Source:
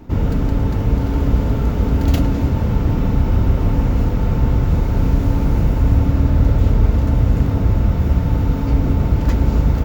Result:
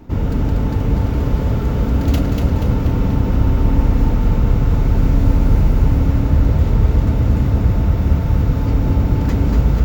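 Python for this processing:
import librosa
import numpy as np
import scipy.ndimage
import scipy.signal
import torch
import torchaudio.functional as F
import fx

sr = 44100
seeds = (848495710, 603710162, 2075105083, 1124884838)

y = fx.echo_feedback(x, sr, ms=240, feedback_pct=55, wet_db=-5.0)
y = y * 10.0 ** (-1.0 / 20.0)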